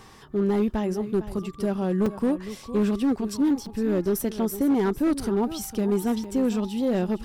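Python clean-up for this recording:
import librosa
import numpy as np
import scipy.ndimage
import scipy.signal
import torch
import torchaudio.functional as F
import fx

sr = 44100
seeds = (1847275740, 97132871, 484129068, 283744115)

y = fx.fix_declip(x, sr, threshold_db=-17.0)
y = fx.fix_interpolate(y, sr, at_s=(2.06, 3.66, 6.24), length_ms=4.2)
y = fx.fix_echo_inverse(y, sr, delay_ms=457, level_db=-14.0)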